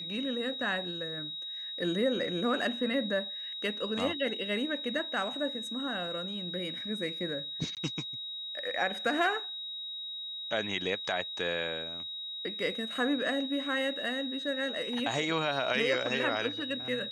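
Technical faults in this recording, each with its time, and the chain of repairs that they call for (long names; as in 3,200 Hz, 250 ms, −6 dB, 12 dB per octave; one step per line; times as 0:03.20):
whistle 3,800 Hz −37 dBFS
0:07.75–0:07.77: drop-out 18 ms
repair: notch filter 3,800 Hz, Q 30
repair the gap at 0:07.75, 18 ms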